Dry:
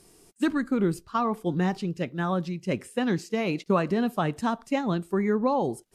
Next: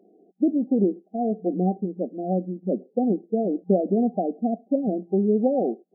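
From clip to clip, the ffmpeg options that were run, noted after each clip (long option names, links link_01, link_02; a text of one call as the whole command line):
ffmpeg -i in.wav -af "afftfilt=real='re*between(b*sr/4096,180,790)':imag='im*between(b*sr/4096,180,790)':win_size=4096:overlap=0.75,volume=4dB" out.wav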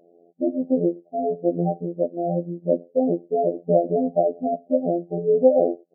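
ffmpeg -i in.wav -af "afftfilt=real='hypot(re,im)*cos(PI*b)':imag='0':win_size=2048:overlap=0.75,lowpass=frequency=600:width_type=q:width=4.9" out.wav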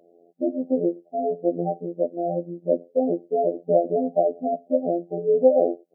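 ffmpeg -i in.wav -filter_complex "[0:a]equalizer=frequency=64:width_type=o:width=2.5:gain=-8.5,acrossover=split=160[link_01][link_02];[link_01]acompressor=threshold=-51dB:ratio=6[link_03];[link_03][link_02]amix=inputs=2:normalize=0" out.wav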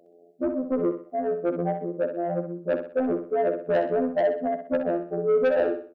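ffmpeg -i in.wav -filter_complex "[0:a]asoftclip=type=tanh:threshold=-17.5dB,asplit=2[link_01][link_02];[link_02]aecho=0:1:63|126|189|252:0.398|0.151|0.0575|0.0218[link_03];[link_01][link_03]amix=inputs=2:normalize=0" out.wav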